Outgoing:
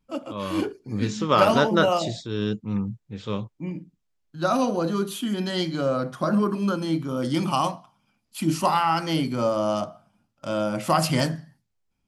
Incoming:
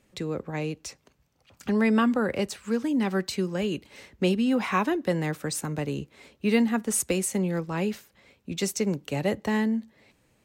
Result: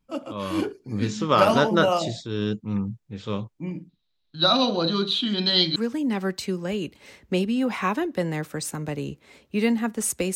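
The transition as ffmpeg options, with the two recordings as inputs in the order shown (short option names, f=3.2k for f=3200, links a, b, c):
-filter_complex "[0:a]asettb=1/sr,asplit=3[a][b][c];[a]atrim=end=3.894[d];[b]atrim=start=3.89:end=5.76,asetpts=PTS-STARTPTS,afade=t=in:d=0.004:c=qsin,afade=t=out:st=1.866:d=0.004:c=qsin,lowpass=f=3.9k:t=q:w=13[e];[c]atrim=start=5.756[f];[d][e]acrossfade=d=0.004:c1=hsin:c2=qsin[g];[g][f]acrossfade=d=0.004:c1=qsin:c2=hsin,apad=whole_dur=10.35,atrim=end=10.35,atrim=end=5.762[h];[1:a]atrim=start=2.658:end=7.25[i];[h][i]acrossfade=d=0.004:c1=hsin:c2=hsin"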